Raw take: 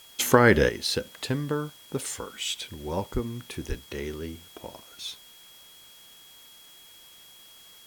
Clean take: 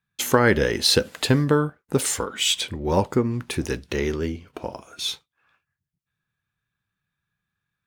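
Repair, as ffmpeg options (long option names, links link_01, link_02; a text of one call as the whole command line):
ffmpeg -i in.wav -filter_complex "[0:a]bandreject=frequency=3300:width=30,asplit=3[link_01][link_02][link_03];[link_01]afade=type=out:start_time=3.13:duration=0.02[link_04];[link_02]highpass=frequency=140:width=0.5412,highpass=frequency=140:width=1.3066,afade=type=in:start_time=3.13:duration=0.02,afade=type=out:start_time=3.25:duration=0.02[link_05];[link_03]afade=type=in:start_time=3.25:duration=0.02[link_06];[link_04][link_05][link_06]amix=inputs=3:normalize=0,asplit=3[link_07][link_08][link_09];[link_07]afade=type=out:start_time=3.68:duration=0.02[link_10];[link_08]highpass=frequency=140:width=0.5412,highpass=frequency=140:width=1.3066,afade=type=in:start_time=3.68:duration=0.02,afade=type=out:start_time=3.8:duration=0.02[link_11];[link_09]afade=type=in:start_time=3.8:duration=0.02[link_12];[link_10][link_11][link_12]amix=inputs=3:normalize=0,afwtdn=0.0022,asetnsamples=nb_out_samples=441:pad=0,asendcmd='0.69 volume volume 9.5dB',volume=0dB" out.wav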